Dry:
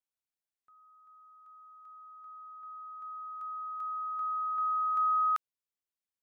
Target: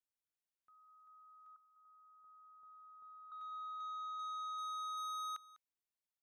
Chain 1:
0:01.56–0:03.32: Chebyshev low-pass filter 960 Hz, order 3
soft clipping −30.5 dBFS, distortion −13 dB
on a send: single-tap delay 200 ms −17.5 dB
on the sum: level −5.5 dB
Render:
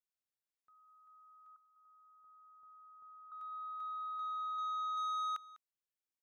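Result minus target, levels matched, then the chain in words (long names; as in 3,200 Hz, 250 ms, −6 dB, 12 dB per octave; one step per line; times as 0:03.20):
soft clipping: distortion −5 dB
0:01.56–0:03.32: Chebyshev low-pass filter 960 Hz, order 3
soft clipping −37 dBFS, distortion −7 dB
on a send: single-tap delay 200 ms −17.5 dB
on the sum: level −5.5 dB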